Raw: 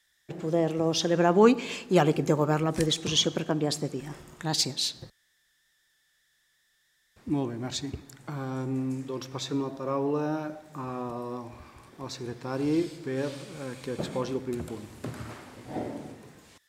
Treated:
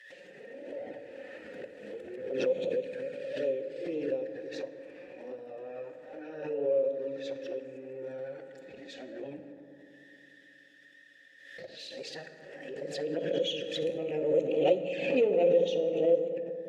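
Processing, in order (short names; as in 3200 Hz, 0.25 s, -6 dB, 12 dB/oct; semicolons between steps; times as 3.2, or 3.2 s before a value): whole clip reversed; notch 610 Hz, Q 14; de-hum 58.86 Hz, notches 5; in parallel at +2 dB: upward compressor, threshold -27 dBFS; on the sum: soft clip -10 dBFS, distortion -14 dB; vowel filter e; envelope flanger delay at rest 8.8 ms, full sweep at -29.5 dBFS; on a send at -6 dB: reverb RT60 3.1 s, pre-delay 3 ms; on the sum: backwards sustainer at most 56 dB/s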